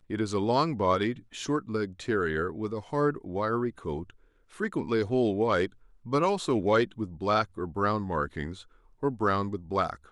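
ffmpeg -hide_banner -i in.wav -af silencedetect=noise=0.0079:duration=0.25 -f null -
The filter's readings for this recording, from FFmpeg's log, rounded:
silence_start: 4.10
silence_end: 4.55 | silence_duration: 0.45
silence_start: 5.67
silence_end: 6.06 | silence_duration: 0.39
silence_start: 8.62
silence_end: 9.03 | silence_duration: 0.41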